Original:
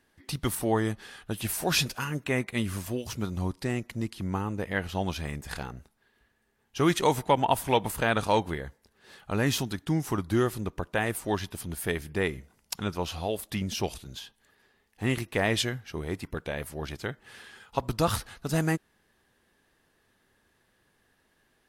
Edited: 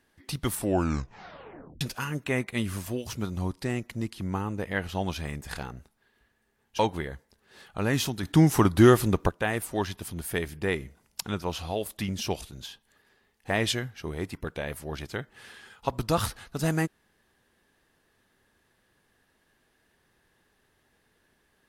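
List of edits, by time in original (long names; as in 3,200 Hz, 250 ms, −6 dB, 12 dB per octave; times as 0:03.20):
0:00.54: tape stop 1.27 s
0:06.79–0:08.32: remove
0:09.76–0:10.82: clip gain +8.5 dB
0:15.03–0:15.40: remove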